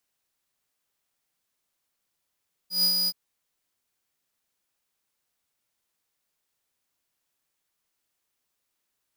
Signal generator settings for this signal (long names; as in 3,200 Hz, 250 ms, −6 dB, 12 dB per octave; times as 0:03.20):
note with an ADSR envelope square 4,920 Hz, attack 136 ms, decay 91 ms, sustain −4 dB, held 0.38 s, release 44 ms −21 dBFS